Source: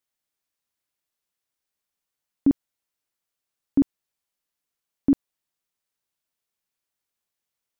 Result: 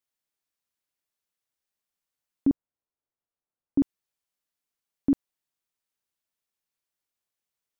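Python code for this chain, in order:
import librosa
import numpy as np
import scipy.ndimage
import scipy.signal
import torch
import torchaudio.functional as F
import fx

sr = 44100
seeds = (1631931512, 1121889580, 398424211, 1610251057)

y = fx.lowpass(x, sr, hz=1100.0, slope=12, at=(2.47, 3.78))
y = y * librosa.db_to_amplitude(-3.5)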